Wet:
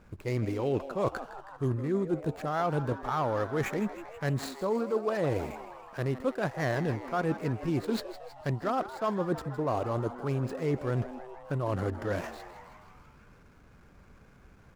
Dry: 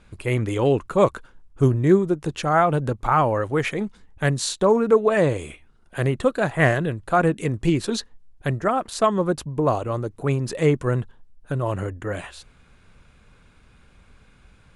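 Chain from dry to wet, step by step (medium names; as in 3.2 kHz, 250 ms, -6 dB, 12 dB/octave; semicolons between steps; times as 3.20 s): median filter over 15 samples; bass shelf 61 Hz -7.5 dB; reverse; compression 6:1, threshold -27 dBFS, peak gain reduction 15 dB; reverse; frequency-shifting echo 160 ms, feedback 65%, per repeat +130 Hz, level -14 dB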